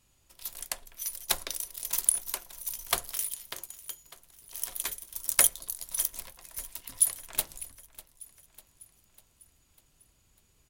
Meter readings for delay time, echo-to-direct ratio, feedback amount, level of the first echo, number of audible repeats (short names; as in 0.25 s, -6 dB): 0.598 s, -17.5 dB, 55%, -19.0 dB, 4